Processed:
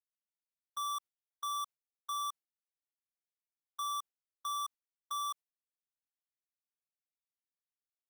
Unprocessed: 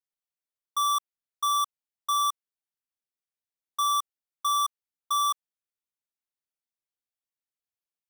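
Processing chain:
noise gate with hold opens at −25 dBFS
brickwall limiter −36 dBFS, peak gain reduction 12 dB

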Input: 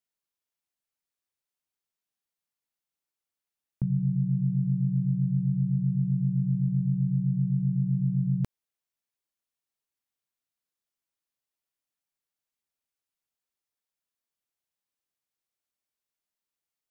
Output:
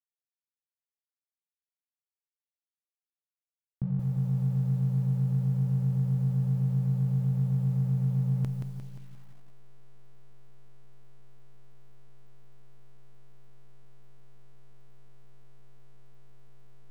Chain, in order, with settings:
slack as between gear wheels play −38 dBFS
feedback echo at a low word length 176 ms, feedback 55%, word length 9 bits, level −5.5 dB
level −3 dB

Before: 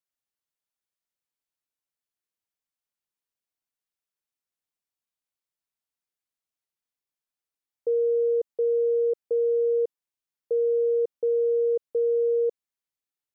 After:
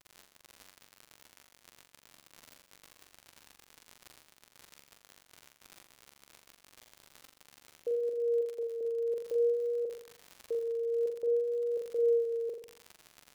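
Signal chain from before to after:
pitch vibrato 0.54 Hz 24 cents
surface crackle 45 per second −35 dBFS
brickwall limiter −28 dBFS, peak gain reduction 10 dB
0:08.09–0:08.81: low-shelf EQ 320 Hz −11.5 dB
flutter between parallel walls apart 7.3 metres, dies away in 0.58 s

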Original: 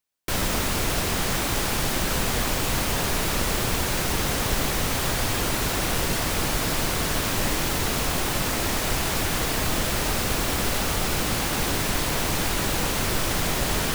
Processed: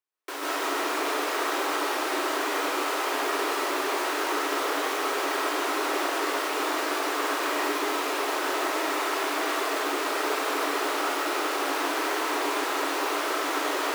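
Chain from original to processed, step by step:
Chebyshev high-pass with heavy ripple 280 Hz, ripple 6 dB
high-shelf EQ 4,300 Hz −6 dB
comb and all-pass reverb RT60 1.3 s, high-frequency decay 0.6×, pre-delay 100 ms, DRR −6 dB
level −2.5 dB

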